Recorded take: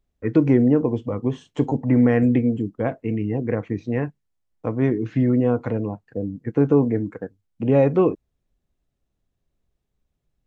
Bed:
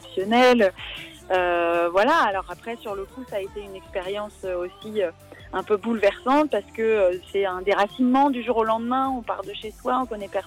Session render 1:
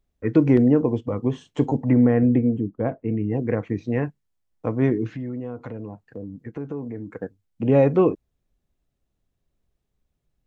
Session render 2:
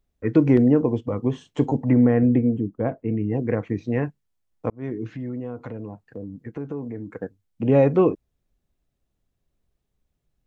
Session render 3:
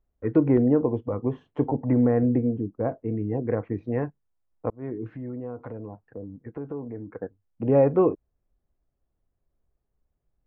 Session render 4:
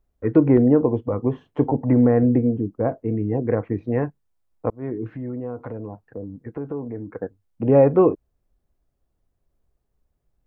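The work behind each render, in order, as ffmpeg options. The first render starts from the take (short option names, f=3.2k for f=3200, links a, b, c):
-filter_complex "[0:a]asettb=1/sr,asplit=3[a][b][c];[a]atrim=end=0.574[d];[b]atrim=start=0.57:end=1.17,asetpts=PTS-STARTPTS,afade=t=in:d=0.004:c=qsin,afade=t=out:st=0.596:d=0.004:c=qsin,agate=range=-6dB:threshold=-32dB:ratio=16:release=100:detection=peak[e];[c]atrim=start=1.166[f];[d][e]acrossfade=d=0.004:c1=hsin:c2=qsin[g];[g][f]acrossfade=d=0.004:c1=qsin:c2=hsin,asettb=1/sr,asplit=3[h][i][j];[h]atrim=end=1.934[k];[i]atrim=start=1.93:end=3.32,asetpts=PTS-STARTPTS,afade=t=in:d=0.004:c=qsin,afade=t=out:st=1.386:d=0.004:c=qsin,lowpass=f=1k:p=1[l];[j]atrim=start=3.316[m];[k][l]acrossfade=d=0.004:c1=hsin:c2=qsin[n];[n][m]acrossfade=d=0.004:c1=qsin:c2=hsin,asettb=1/sr,asplit=3[o][p][q];[o]atrim=end=5.114[r];[p]atrim=start=5.11:end=7.13,asetpts=PTS-STARTPTS,afade=t=in:d=0.004:c=qsin,afade=t=out:st=2.016:d=0.004:c=qsin,acompressor=threshold=-34dB:ratio=2.5:attack=3.2:release=140:knee=1:detection=peak[s];[q]atrim=start=7.126[t];[r][s]acrossfade=d=0.004:c1=hsin:c2=qsin[u];[u][t]acrossfade=d=0.004:c1=qsin:c2=hsin"
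-filter_complex "[0:a]asplit=2[a][b];[a]atrim=end=4.7,asetpts=PTS-STARTPTS,afade=t=out:st=4.696:d=0.004:c=hsin[c];[b]atrim=start=4.7,asetpts=PTS-STARTPTS,afade=t=in:d=0.56[d];[c][d]concat=n=2:v=0:a=1"
-af "lowpass=1.3k,equalizer=f=180:t=o:w=1.7:g=-5.5"
-af "volume=4.5dB"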